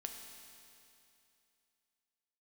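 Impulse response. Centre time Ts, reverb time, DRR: 63 ms, 2.7 s, 3.5 dB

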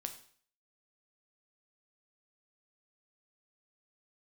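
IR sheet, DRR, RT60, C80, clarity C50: 6.0 dB, 0.50 s, 14.5 dB, 11.5 dB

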